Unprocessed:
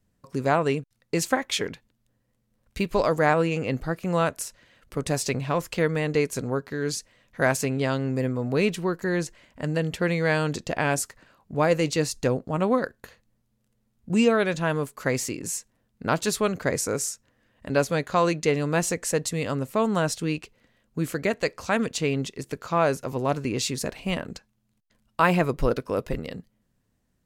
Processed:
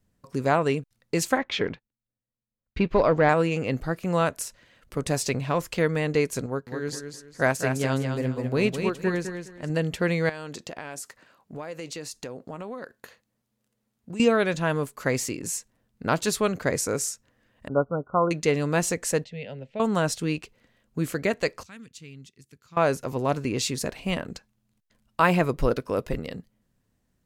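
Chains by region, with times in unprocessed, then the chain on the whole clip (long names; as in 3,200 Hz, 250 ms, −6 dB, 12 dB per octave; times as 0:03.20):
0:01.38–0:03.29: leveller curve on the samples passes 1 + high-frequency loss of the air 240 metres + noise gate −50 dBFS, range −19 dB
0:06.46–0:09.70: repeating echo 208 ms, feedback 32%, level −5 dB + expander for the loud parts, over −33 dBFS
0:10.29–0:14.20: high-pass filter 260 Hz 6 dB per octave + downward compressor, threshold −33 dBFS
0:17.68–0:18.31: linear-phase brick-wall low-pass 1,500 Hz + expander for the loud parts, over −37 dBFS
0:19.24–0:19.80: transistor ladder low-pass 3,600 Hz, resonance 35% + phaser with its sweep stopped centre 310 Hz, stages 6
0:21.63–0:22.77: high-pass filter 77 Hz + guitar amp tone stack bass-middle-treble 6-0-2
whole clip: no processing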